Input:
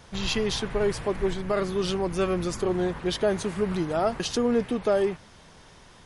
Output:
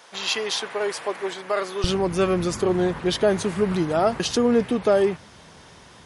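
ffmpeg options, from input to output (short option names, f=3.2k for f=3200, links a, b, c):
-af "asetnsamples=n=441:p=0,asendcmd='1.84 highpass f 66',highpass=540,volume=4.5dB"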